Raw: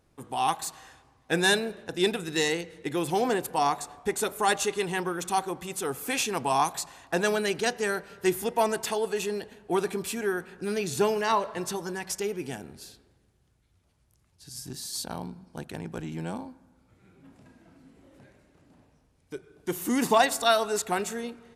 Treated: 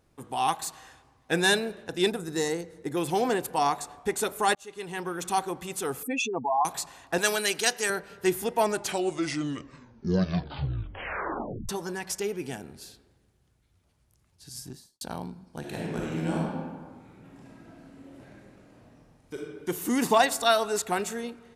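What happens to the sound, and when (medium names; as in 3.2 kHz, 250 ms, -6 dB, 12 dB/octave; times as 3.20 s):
2.10–2.97 s: peaking EQ 2.8 kHz -13 dB 1.1 oct
4.55–5.28 s: fade in
6.03–6.65 s: spectral contrast enhancement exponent 2.9
7.18–7.90 s: tilt EQ +3 dB/octave
8.57 s: tape stop 3.12 s
14.56–15.01 s: studio fade out
15.59–19.35 s: reverb throw, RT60 1.6 s, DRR -4 dB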